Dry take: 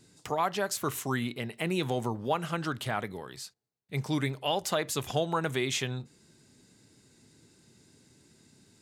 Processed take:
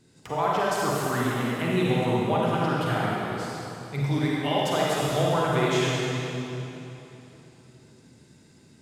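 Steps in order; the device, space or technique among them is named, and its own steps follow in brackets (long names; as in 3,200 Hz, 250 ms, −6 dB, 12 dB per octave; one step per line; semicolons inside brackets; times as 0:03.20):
swimming-pool hall (convolution reverb RT60 3.3 s, pre-delay 37 ms, DRR −6 dB; high-shelf EQ 3,900 Hz −7 dB)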